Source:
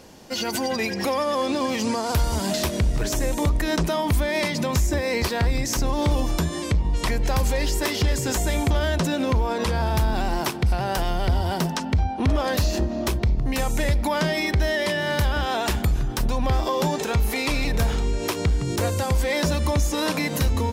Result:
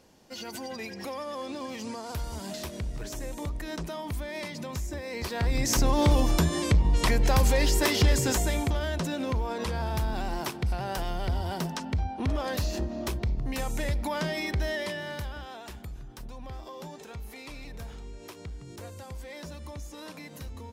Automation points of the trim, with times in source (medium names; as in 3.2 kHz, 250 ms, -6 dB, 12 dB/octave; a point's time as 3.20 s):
5.11 s -12.5 dB
5.71 s 0 dB
8.18 s 0 dB
8.79 s -7.5 dB
14.73 s -7.5 dB
15.61 s -19 dB